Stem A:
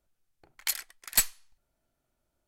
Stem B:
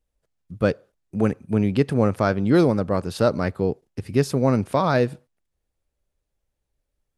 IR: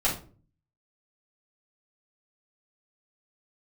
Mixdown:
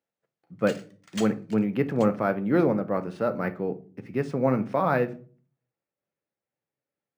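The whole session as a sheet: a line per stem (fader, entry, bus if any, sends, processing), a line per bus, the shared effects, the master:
-14.0 dB, 0.00 s, send -11 dB, echo send -9.5 dB, dry
-3.0 dB, 0.00 s, send -18.5 dB, no echo send, resonant high shelf 3000 Hz -9 dB, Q 1.5; noise-modulated level, depth 55%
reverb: on, RT60 0.40 s, pre-delay 4 ms
echo: echo 0.831 s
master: HPF 140 Hz 24 dB/oct; decimation joined by straight lines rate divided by 3×

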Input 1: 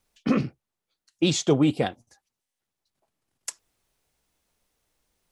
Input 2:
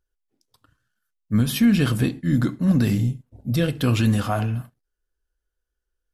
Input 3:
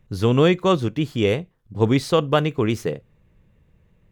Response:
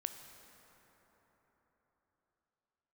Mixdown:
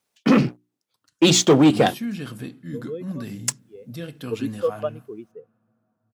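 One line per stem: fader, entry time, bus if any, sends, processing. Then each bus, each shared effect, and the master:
+3.0 dB, 0.00 s, no send, notches 60/120/180/240/300/360 Hz; sample leveller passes 2
-12.5 dB, 0.40 s, send -15.5 dB, dry
-6.5 dB, 2.50 s, no send, tilt +2 dB/oct; spectral expander 2.5:1; auto duck -22 dB, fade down 0.80 s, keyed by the first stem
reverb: on, RT60 4.4 s, pre-delay 13 ms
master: HPF 140 Hz 12 dB/oct

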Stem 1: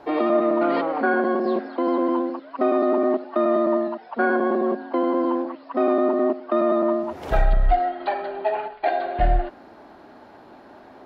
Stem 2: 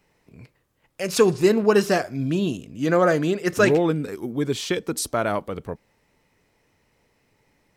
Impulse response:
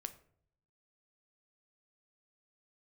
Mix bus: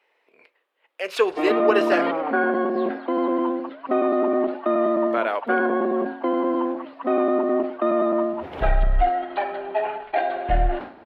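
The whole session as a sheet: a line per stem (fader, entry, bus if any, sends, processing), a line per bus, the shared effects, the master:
-1.0 dB, 1.30 s, no send, sustainer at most 110 dB/s
0.0 dB, 0.00 s, muted 2.21–5.1, no send, HPF 430 Hz 24 dB/oct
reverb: off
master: resonant high shelf 4400 Hz -12.5 dB, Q 1.5

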